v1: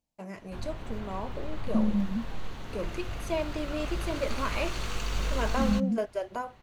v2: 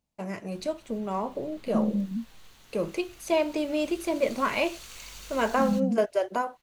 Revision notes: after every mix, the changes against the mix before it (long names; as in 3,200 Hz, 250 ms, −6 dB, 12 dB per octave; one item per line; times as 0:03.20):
first voice +6.5 dB
background: add first-order pre-emphasis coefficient 0.9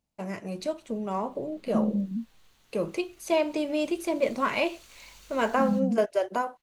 background −8.5 dB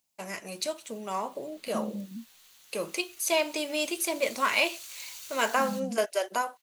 master: add spectral tilt +4 dB per octave